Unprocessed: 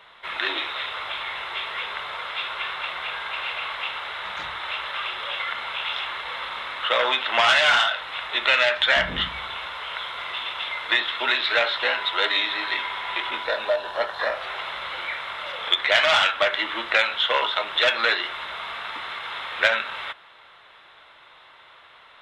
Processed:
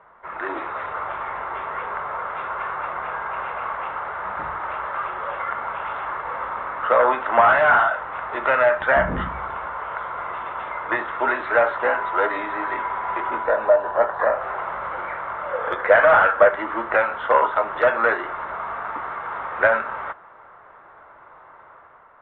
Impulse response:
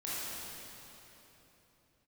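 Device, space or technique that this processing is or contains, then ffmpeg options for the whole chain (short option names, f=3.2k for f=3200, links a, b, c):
action camera in a waterproof case: -filter_complex "[0:a]asettb=1/sr,asplit=3[a][b][c];[a]atrim=end=15.514[d];[b]atrim=start=15.51:end=16.49,asetpts=PTS-STARTPTS,afade=t=in:d=0.004:c=qsin,afade=t=out:st=0.976:d=0.004:c=qsin,equalizer=f=500:t=o:w=0.33:g=10,equalizer=f=1.6k:t=o:w=0.33:g=6,equalizer=f=6.3k:t=o:w=0.33:g=-5[e];[c]atrim=start=16.486[f];[d][e]acrossfade=d=0.004:c1=hsin:c2=qsin[g];[g][f]acrossfade=d=0.004:c1=qsin:c2=hsin,lowpass=f=1.4k:w=0.5412,lowpass=f=1.4k:w=1.3066,dynaudnorm=f=120:g=9:m=5dB,volume=2.5dB" -ar 44100 -c:a aac -b:a 48k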